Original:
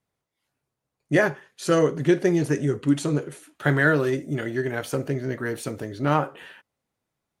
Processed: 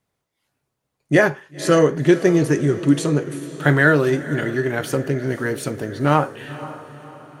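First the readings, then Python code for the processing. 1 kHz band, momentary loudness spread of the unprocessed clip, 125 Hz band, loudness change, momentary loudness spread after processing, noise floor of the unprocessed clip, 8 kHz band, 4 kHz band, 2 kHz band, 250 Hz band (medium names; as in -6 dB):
+5.0 dB, 9 LU, +5.0 dB, +5.0 dB, 13 LU, -84 dBFS, +5.0 dB, +5.0 dB, +5.0 dB, +5.0 dB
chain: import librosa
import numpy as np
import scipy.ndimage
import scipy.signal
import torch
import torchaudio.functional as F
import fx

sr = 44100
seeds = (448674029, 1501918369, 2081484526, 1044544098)

y = fx.echo_diffused(x, sr, ms=517, feedback_pct=47, wet_db=-15.0)
y = y * librosa.db_to_amplitude(5.0)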